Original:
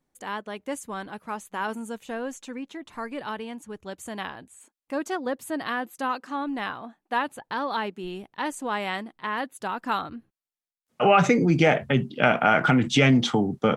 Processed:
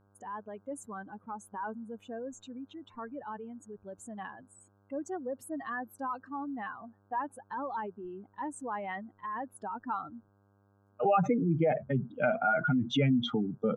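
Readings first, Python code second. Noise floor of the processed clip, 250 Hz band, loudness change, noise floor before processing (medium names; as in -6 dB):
-67 dBFS, -7.5 dB, -8.5 dB, under -85 dBFS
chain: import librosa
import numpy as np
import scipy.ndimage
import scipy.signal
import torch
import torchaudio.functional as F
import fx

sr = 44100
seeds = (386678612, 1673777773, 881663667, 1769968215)

y = fx.spec_expand(x, sr, power=2.3)
y = fx.dmg_buzz(y, sr, base_hz=100.0, harmonics=16, level_db=-60.0, tilt_db=-5, odd_only=False)
y = y * 10.0 ** (-7.5 / 20.0)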